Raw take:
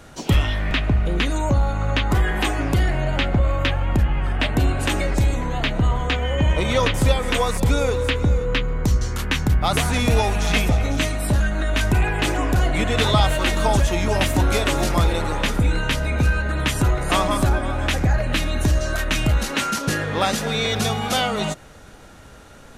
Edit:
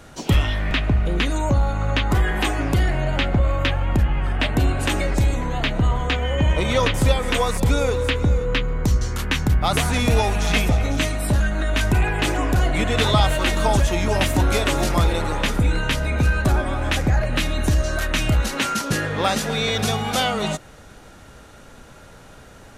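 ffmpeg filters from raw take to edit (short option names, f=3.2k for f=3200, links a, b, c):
-filter_complex "[0:a]asplit=2[a][b];[a]atrim=end=16.452[c];[b]atrim=start=17.418[d];[c][d]acrossfade=d=0.004:c1=hsin:c2=hsin"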